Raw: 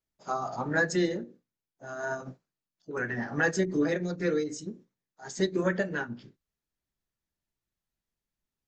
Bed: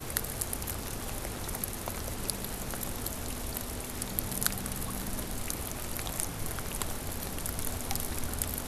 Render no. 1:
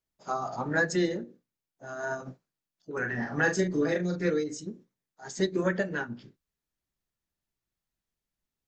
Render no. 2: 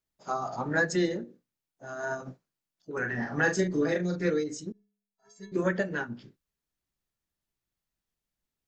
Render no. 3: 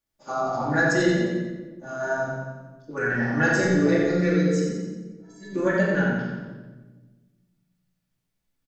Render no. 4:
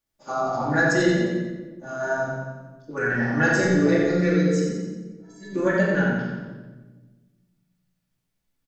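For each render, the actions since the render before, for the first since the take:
2.98–4.3 doubler 39 ms -6.5 dB
4.72–5.52 metallic resonator 200 Hz, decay 0.61 s, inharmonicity 0.03
on a send: feedback echo 89 ms, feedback 50%, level -7 dB; on the sum: shoebox room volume 880 m³, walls mixed, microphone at 2.4 m
gain +1 dB

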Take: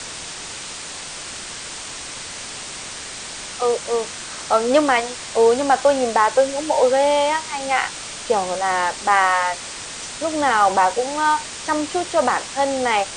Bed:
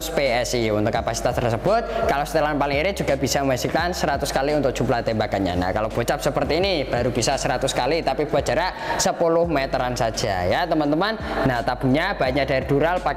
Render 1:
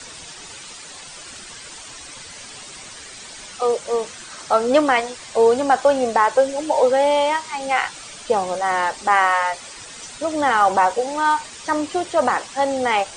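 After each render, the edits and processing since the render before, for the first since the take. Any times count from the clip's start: denoiser 10 dB, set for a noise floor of -33 dBFS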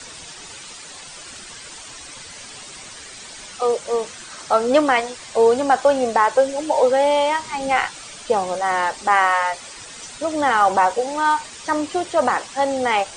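7.39–7.86 low shelf 320 Hz +9 dB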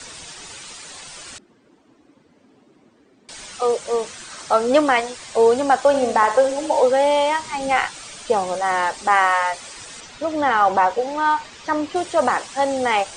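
1.38–3.29 band-pass 280 Hz, Q 2.3; 5.87–6.8 flutter echo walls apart 11.9 m, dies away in 0.45 s; 10–11.96 air absorption 100 m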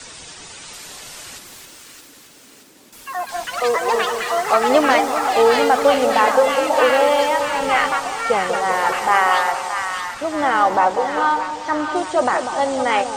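echoes that change speed 0.731 s, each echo +7 st, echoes 3, each echo -6 dB; split-band echo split 1000 Hz, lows 0.194 s, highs 0.622 s, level -6.5 dB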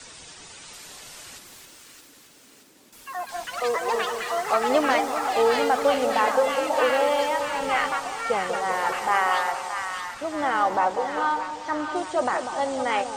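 gain -6.5 dB

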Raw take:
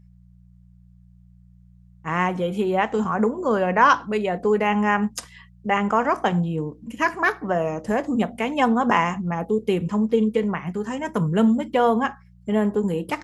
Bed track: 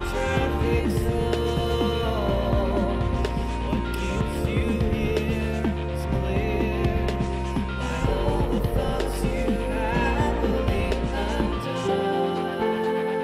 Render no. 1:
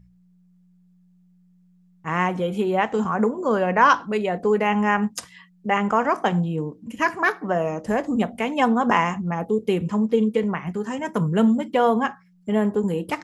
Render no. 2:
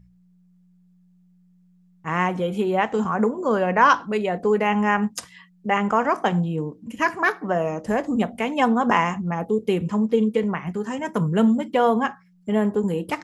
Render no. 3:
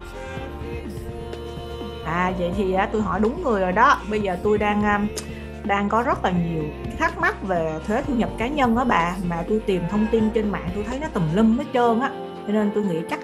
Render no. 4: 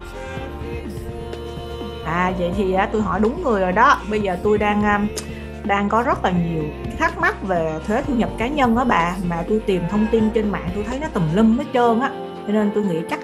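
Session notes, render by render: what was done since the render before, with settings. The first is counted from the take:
de-hum 60 Hz, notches 2
nothing audible
add bed track -8.5 dB
gain +2.5 dB; limiter -2 dBFS, peak gain reduction 1.5 dB

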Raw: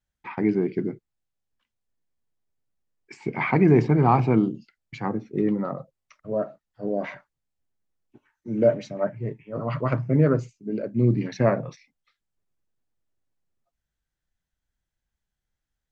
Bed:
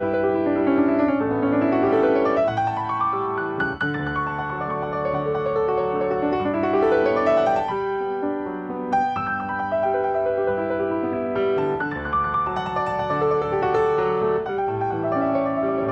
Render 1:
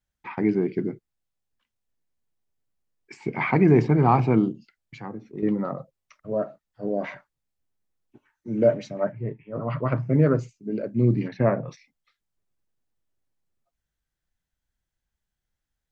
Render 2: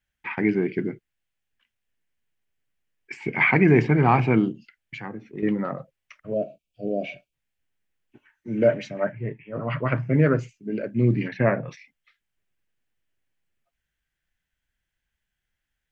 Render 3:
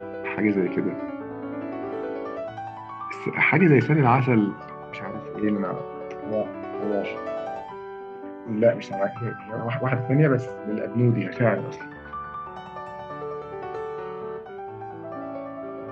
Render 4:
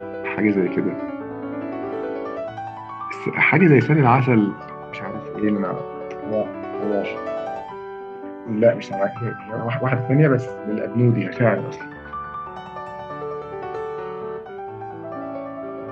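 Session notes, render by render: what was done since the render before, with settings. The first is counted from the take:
4.52–5.43 compressor 1.5:1, threshold -46 dBFS; 9.12–9.96 air absorption 180 m; 11.28–11.68 air absorption 290 m
6.33–7.33 spectral gain 750–2200 Hz -28 dB; band shelf 2200 Hz +9 dB 1.3 oct
add bed -12.5 dB
gain +3.5 dB

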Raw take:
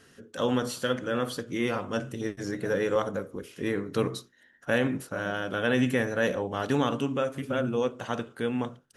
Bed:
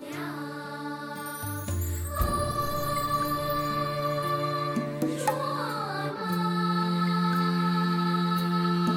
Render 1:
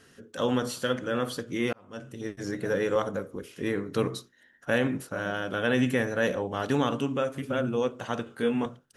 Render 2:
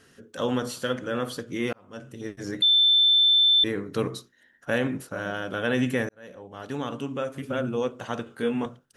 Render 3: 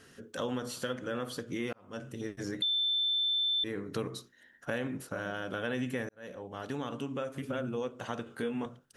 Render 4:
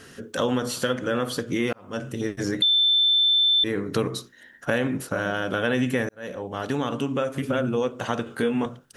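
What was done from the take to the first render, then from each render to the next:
1.73–2.49 fade in linear; 8.24–8.66 doubler 21 ms -3.5 dB
2.62–3.64 bleep 3540 Hz -15.5 dBFS; 6.09–7.5 fade in
compressor 2.5:1, threshold -35 dBFS, peak gain reduction 11 dB
gain +10.5 dB

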